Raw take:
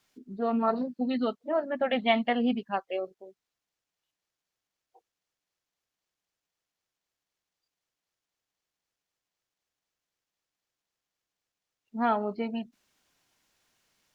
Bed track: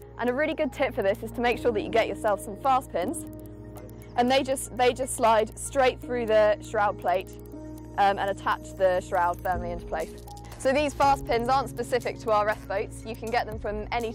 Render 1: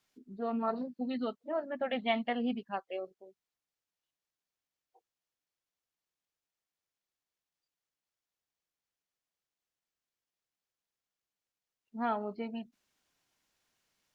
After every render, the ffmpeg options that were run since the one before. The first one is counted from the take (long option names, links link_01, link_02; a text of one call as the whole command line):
ffmpeg -i in.wav -af "volume=-6.5dB" out.wav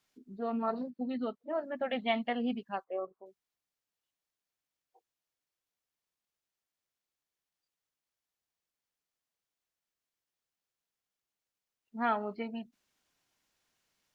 ffmpeg -i in.wav -filter_complex "[0:a]asettb=1/sr,asplit=3[link_01][link_02][link_03];[link_01]atrim=end=0.904[link_04];[link_02]atrim=start=0.9:end=1.49,asetpts=PTS-STARTPTS,afade=type=in:duration=0.004:curve=qsin,afade=type=out:start_time=0.586:duration=0.004:curve=qsin,highshelf=frequency=3100:gain=-9.5[link_05];[link_03]atrim=start=1.486[link_06];[link_04][link_05]acrossfade=duration=0.004:curve1=hsin:curve2=qsin[link_07];[link_07][link_06]acrossfade=duration=0.004:curve1=qsin:curve2=hsin,asettb=1/sr,asplit=3[link_08][link_09][link_10];[link_08]atrim=end=2.844[link_11];[link_09]atrim=start=2.84:end=3.26,asetpts=PTS-STARTPTS,afade=type=in:duration=0.004:curve=qsin,afade=type=out:start_time=0.416:duration=0.004:curve=qsin,lowpass=frequency=1100:width_type=q:width=6.1[link_12];[link_10]atrim=start=3.256[link_13];[link_11][link_12]acrossfade=duration=0.004:curve1=hsin:curve2=qsin[link_14];[link_14][link_13]acrossfade=duration=0.004:curve1=qsin:curve2=hsin,asettb=1/sr,asplit=3[link_15][link_16][link_17];[link_15]atrim=end=11.974[link_18];[link_16]atrim=start=11.97:end=12.43,asetpts=PTS-STARTPTS,afade=type=in:duration=0.004:curve=qsin,afade=type=out:start_time=0.456:duration=0.004:curve=qsin,equalizer=frequency=2000:width_type=o:width=1.4:gain=8[link_19];[link_17]atrim=start=12.426[link_20];[link_18][link_19]acrossfade=duration=0.004:curve1=hsin:curve2=qsin[link_21];[link_21][link_20]acrossfade=duration=0.004:curve1=qsin:curve2=hsin" out.wav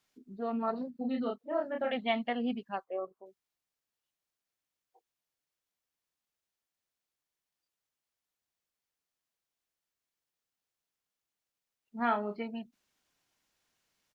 ffmpeg -i in.wav -filter_complex "[0:a]asplit=3[link_01][link_02][link_03];[link_01]afade=type=out:start_time=0.94:duration=0.02[link_04];[link_02]asplit=2[link_05][link_06];[link_06]adelay=30,volume=-2dB[link_07];[link_05][link_07]amix=inputs=2:normalize=0,afade=type=in:start_time=0.94:duration=0.02,afade=type=out:start_time=1.91:duration=0.02[link_08];[link_03]afade=type=in:start_time=1.91:duration=0.02[link_09];[link_04][link_08][link_09]amix=inputs=3:normalize=0,asettb=1/sr,asplit=3[link_10][link_11][link_12];[link_10]atrim=end=11.964[link_13];[link_11]atrim=start=11.96:end=12.41,asetpts=PTS-STARTPTS,afade=type=in:duration=0.004:curve=qsin,afade=type=out:start_time=0.446:duration=0.004:curve=qsin,asplit=2[link_14][link_15];[link_15]adelay=34,volume=-8dB[link_16];[link_14][link_16]amix=inputs=2:normalize=0,atrim=end_sample=19845[link_17];[link_12]atrim=start=12.406[link_18];[link_13][link_17]acrossfade=duration=0.004:curve1=hsin:curve2=qsin[link_19];[link_19][link_18]acrossfade=duration=0.004:curve1=qsin:curve2=hsin" out.wav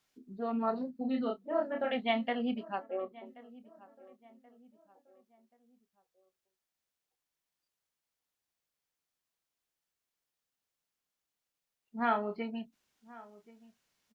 ffmpeg -i in.wav -filter_complex "[0:a]asplit=2[link_01][link_02];[link_02]adelay=27,volume=-13dB[link_03];[link_01][link_03]amix=inputs=2:normalize=0,asplit=2[link_04][link_05];[link_05]adelay=1080,lowpass=frequency=1700:poles=1,volume=-20dB,asplit=2[link_06][link_07];[link_07]adelay=1080,lowpass=frequency=1700:poles=1,volume=0.43,asplit=2[link_08][link_09];[link_09]adelay=1080,lowpass=frequency=1700:poles=1,volume=0.43[link_10];[link_04][link_06][link_08][link_10]amix=inputs=4:normalize=0" out.wav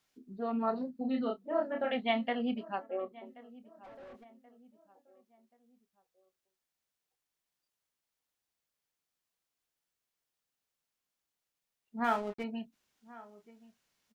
ffmpeg -i in.wav -filter_complex "[0:a]asplit=3[link_01][link_02][link_03];[link_01]afade=type=out:start_time=3.83:duration=0.02[link_04];[link_02]asplit=2[link_05][link_06];[link_06]highpass=frequency=720:poles=1,volume=29dB,asoftclip=type=tanh:threshold=-43.5dB[link_07];[link_05][link_07]amix=inputs=2:normalize=0,lowpass=frequency=1500:poles=1,volume=-6dB,afade=type=in:start_time=3.83:duration=0.02,afade=type=out:start_time=4.23:duration=0.02[link_08];[link_03]afade=type=in:start_time=4.23:duration=0.02[link_09];[link_04][link_08][link_09]amix=inputs=3:normalize=0,asettb=1/sr,asplit=3[link_10][link_11][link_12];[link_10]atrim=end=12.044[link_13];[link_11]atrim=start=12.04:end=12.44,asetpts=PTS-STARTPTS,afade=type=in:duration=0.004:curve=qsin,afade=type=out:start_time=0.396:duration=0.004:curve=qsin,aeval=exprs='sgn(val(0))*max(abs(val(0))-0.00473,0)':channel_layout=same[link_14];[link_12]atrim=start=12.436[link_15];[link_13][link_14]acrossfade=duration=0.004:curve1=hsin:curve2=qsin[link_16];[link_16][link_15]acrossfade=duration=0.004:curve1=qsin:curve2=hsin" out.wav